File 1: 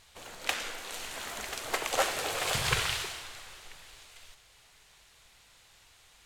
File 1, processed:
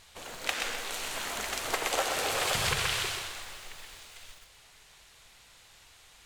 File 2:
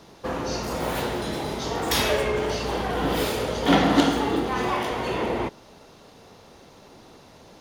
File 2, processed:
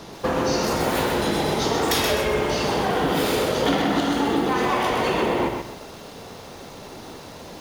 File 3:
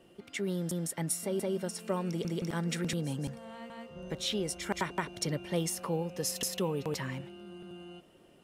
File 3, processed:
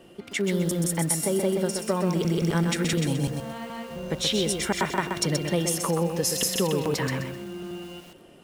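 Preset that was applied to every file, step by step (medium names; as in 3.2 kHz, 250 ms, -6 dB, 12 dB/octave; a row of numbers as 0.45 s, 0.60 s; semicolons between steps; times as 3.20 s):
compression 6:1, threshold -29 dBFS; hum notches 60/120 Hz; bit-crushed delay 128 ms, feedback 35%, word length 9-bit, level -5 dB; peak normalisation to -9 dBFS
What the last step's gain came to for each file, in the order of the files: +3.0 dB, +9.5 dB, +9.0 dB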